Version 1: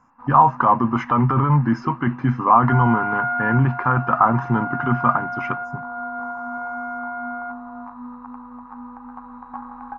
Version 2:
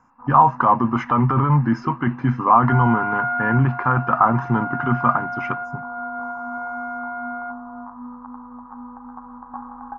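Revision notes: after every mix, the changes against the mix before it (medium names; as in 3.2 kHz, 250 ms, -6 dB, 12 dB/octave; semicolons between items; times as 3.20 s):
first sound: add low-pass 1.5 kHz 24 dB/octave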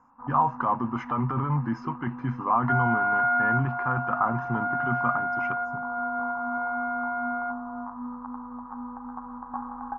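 speech -9.5 dB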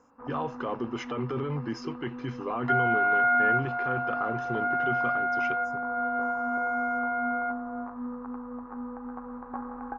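speech -7.0 dB; master: remove FFT filter 240 Hz 0 dB, 430 Hz -16 dB, 940 Hz +8 dB, 3.4 kHz -19 dB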